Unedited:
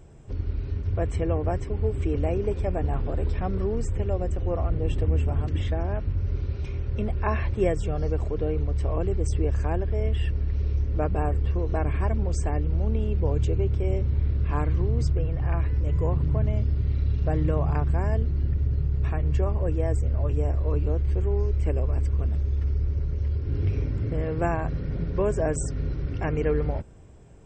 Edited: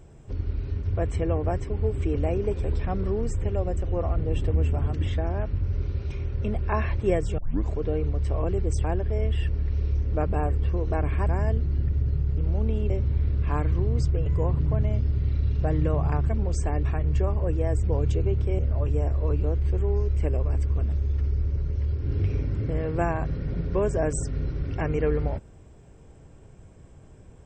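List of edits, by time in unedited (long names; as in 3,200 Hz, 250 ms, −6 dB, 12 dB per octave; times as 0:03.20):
0:02.64–0:03.18: remove
0:07.92: tape start 0.31 s
0:09.38–0:09.66: remove
0:12.09–0:12.63: swap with 0:17.92–0:19.02
0:13.16–0:13.92: move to 0:20.02
0:15.28–0:15.89: remove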